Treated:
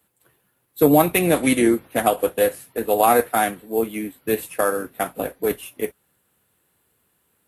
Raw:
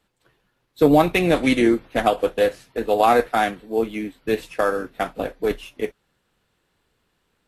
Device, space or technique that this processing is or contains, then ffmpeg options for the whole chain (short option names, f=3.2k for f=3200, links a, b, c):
budget condenser microphone: -af "highpass=f=62:w=0.5412,highpass=f=62:w=1.3066,highshelf=f=7.7k:t=q:w=1.5:g=14"